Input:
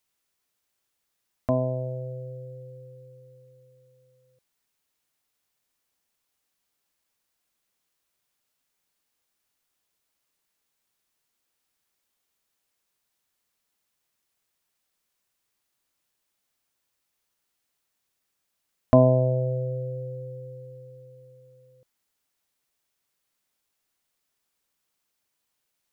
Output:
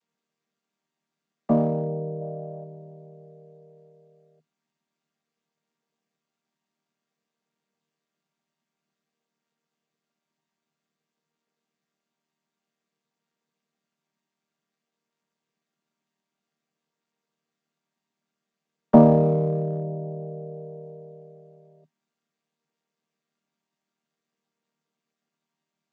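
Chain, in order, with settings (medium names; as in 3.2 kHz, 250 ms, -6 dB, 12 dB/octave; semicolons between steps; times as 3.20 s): vocoder on a held chord major triad, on D#3; time-frequency box 2.21–2.64 s, 560–1800 Hz +7 dB; in parallel at -10 dB: one-sided clip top -26.5 dBFS; on the sum: trim +2 dB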